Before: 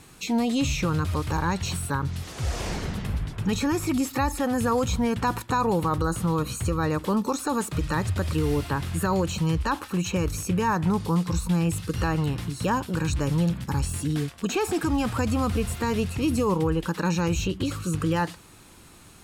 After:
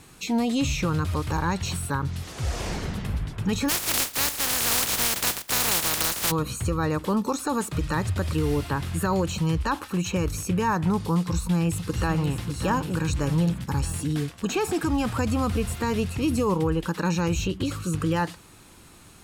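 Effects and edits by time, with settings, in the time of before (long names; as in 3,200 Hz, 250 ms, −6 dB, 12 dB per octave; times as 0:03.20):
0:03.68–0:06.30: compressing power law on the bin magnitudes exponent 0.13
0:11.19–0:12.32: delay throw 600 ms, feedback 55%, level −9.5 dB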